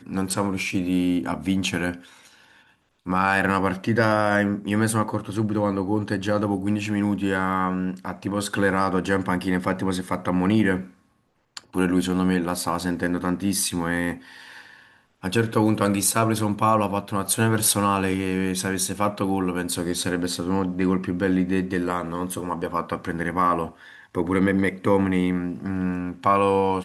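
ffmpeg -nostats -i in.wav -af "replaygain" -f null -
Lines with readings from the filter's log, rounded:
track_gain = +4.8 dB
track_peak = 0.379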